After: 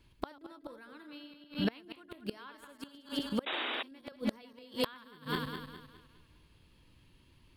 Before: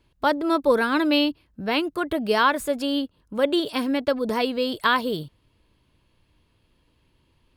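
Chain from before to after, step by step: regenerating reverse delay 0.103 s, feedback 62%, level -6 dB; bell 600 Hz -6 dB 1.7 oct; flipped gate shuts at -18 dBFS, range -30 dB; painted sound noise, 3.46–3.83, 230–3900 Hz -37 dBFS; gain +1 dB

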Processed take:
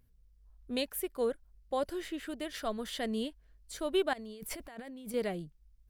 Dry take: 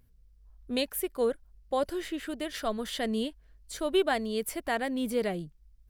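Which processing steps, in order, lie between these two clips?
4.13–5.14 negative-ratio compressor -41 dBFS, ratio -1; gain -4 dB

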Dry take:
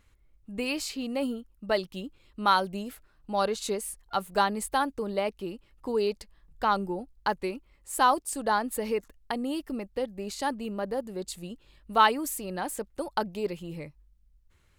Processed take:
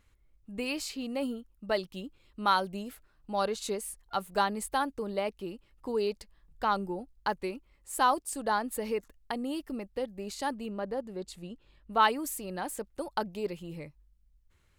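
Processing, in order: 10.65–12.01 high shelf 8900 Hz -> 4600 Hz -11.5 dB; gain -3 dB

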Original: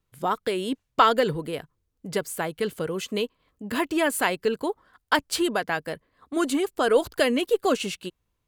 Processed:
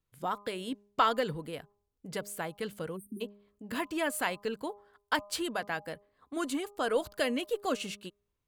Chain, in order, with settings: de-hum 203.9 Hz, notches 6; spectral delete 2.97–3.21, 390–8300 Hz; dynamic EQ 390 Hz, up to -6 dB, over -40 dBFS, Q 3.9; gain -7.5 dB

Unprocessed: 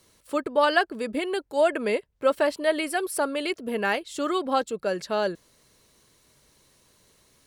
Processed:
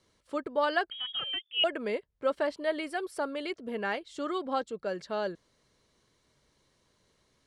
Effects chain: air absorption 74 m; notch 2600 Hz, Q 16; 0.9–1.64 inverted band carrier 3500 Hz; gain -6.5 dB

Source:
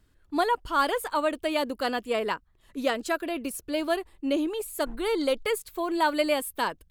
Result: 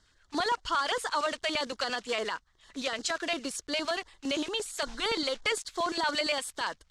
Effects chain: block floating point 5-bit; LPF 7100 Hz 24 dB/oct; tilt shelf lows -8.5 dB, about 860 Hz; limiter -21.5 dBFS, peak gain reduction 12.5 dB; LFO notch square 8.7 Hz 320–2500 Hz; gain +2.5 dB

